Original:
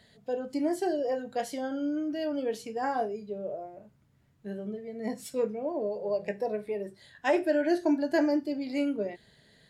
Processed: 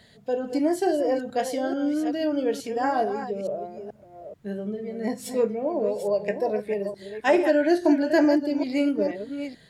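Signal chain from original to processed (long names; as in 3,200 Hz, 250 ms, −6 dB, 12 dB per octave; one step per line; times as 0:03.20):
delay that plays each chunk backwards 434 ms, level −9 dB
level +5.5 dB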